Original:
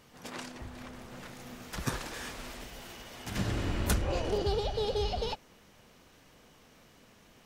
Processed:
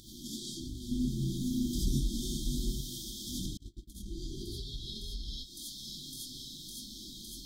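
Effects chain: on a send: thin delay 0.558 s, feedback 77%, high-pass 4300 Hz, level -13 dB; on the sum: chorus 1.3 Hz, delay 19 ms, depth 3.4 ms; in parallel at -1 dB: upward compressor, threshold -35 dBFS; on the sum: flange 0.56 Hz, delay 1.9 ms, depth 6.6 ms, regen +44%; non-linear reverb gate 0.11 s rising, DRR -6.5 dB; compressor 6:1, threshold -30 dBFS, peak gain reduction 13.5 dB; 0.91–2.81 low shelf 490 Hz +10.5 dB; 3.57–4.06 gate -29 dBFS, range -40 dB; brick-wall FIR band-stop 380–3100 Hz; low shelf 210 Hz -5 dB

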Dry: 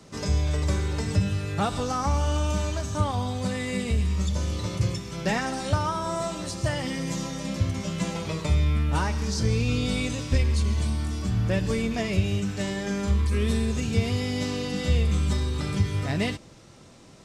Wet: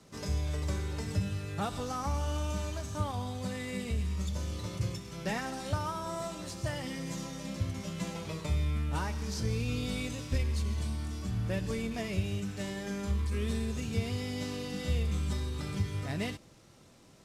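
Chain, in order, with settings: CVSD 64 kbps; gain -8 dB

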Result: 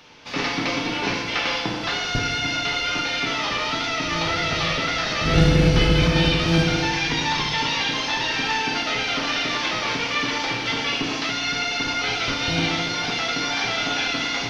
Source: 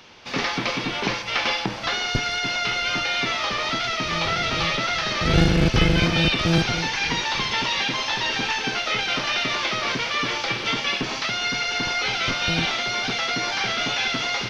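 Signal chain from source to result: FDN reverb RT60 1.4 s, low-frequency decay 1.4×, high-frequency decay 0.95×, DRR 1.5 dB; gain -2 dB

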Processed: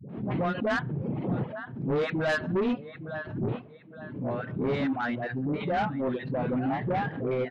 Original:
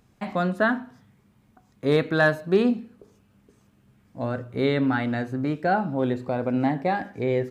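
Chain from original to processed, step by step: wind noise 170 Hz -29 dBFS; elliptic band-pass 130–3400 Hz; air absorption 92 m; feedback echo 0.862 s, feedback 33%, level -14 dB; reverb removal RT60 1 s; dispersion highs, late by 99 ms, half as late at 540 Hz; soft clip -22.5 dBFS, distortion -11 dB; backwards sustainer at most 77 dB/s

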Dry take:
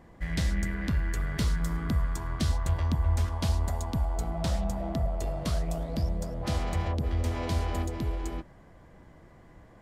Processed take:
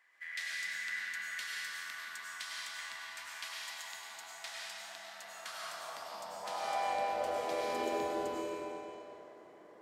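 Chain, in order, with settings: digital reverb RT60 2.8 s, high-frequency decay 0.9×, pre-delay 60 ms, DRR -5 dB; high-pass sweep 1900 Hz -> 420 Hz, 5.12–7.85; gain -8.5 dB

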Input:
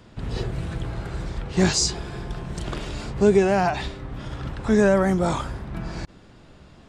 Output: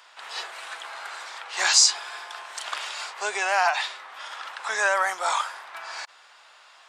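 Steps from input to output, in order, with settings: HPF 870 Hz 24 dB/oct; gain +6 dB

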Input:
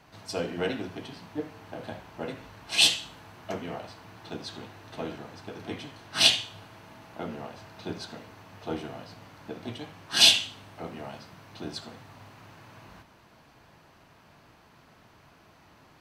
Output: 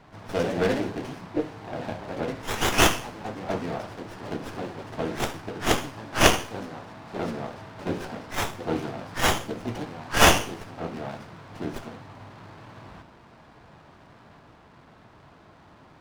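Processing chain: low-pass opened by the level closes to 2900 Hz, open at -25.5 dBFS; echoes that change speed 0.135 s, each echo +2 st, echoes 2, each echo -6 dB; running maximum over 9 samples; gain +5.5 dB

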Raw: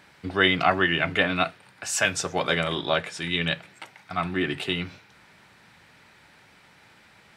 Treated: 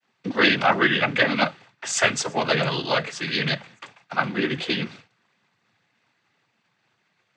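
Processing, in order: expander -43 dBFS; noise vocoder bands 16; gain +3 dB

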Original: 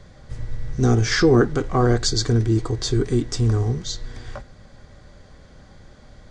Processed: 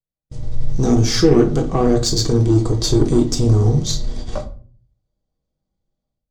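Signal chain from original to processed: gate -34 dBFS, range -50 dB; bell 1700 Hz -14.5 dB 1 oct; notches 60/120 Hz; in parallel at -1.5 dB: limiter -16 dBFS, peak gain reduction 9.5 dB; on the sum: added harmonics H 8 -28 dB, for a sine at -4 dBFS; AGC gain up to 16.5 dB; on a send at -4 dB: reverb RT60 0.40 s, pre-delay 6 ms; on the sum: gain -4.5 dB

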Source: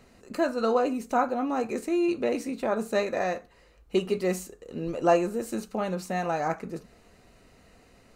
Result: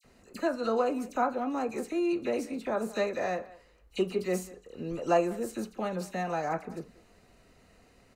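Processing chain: dispersion lows, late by 45 ms, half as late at 2200 Hz; speakerphone echo 0.19 s, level -19 dB; gain -3.5 dB

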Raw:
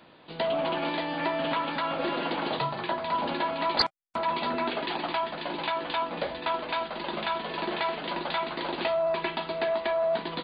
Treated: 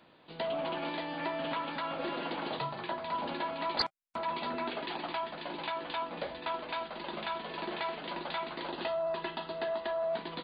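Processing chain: 8.7–10.09 notch 2300 Hz, Q 6.7; gain -6.5 dB

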